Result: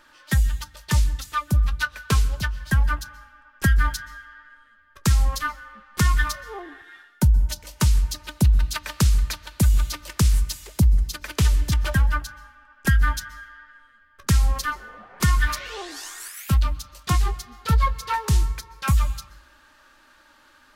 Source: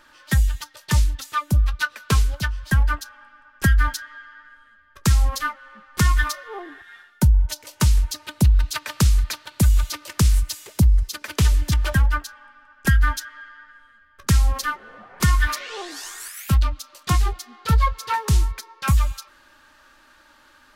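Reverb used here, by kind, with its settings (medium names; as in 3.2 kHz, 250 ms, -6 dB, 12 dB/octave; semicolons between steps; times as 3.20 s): plate-style reverb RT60 0.74 s, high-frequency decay 0.65×, pre-delay 115 ms, DRR 19.5 dB; trim -1.5 dB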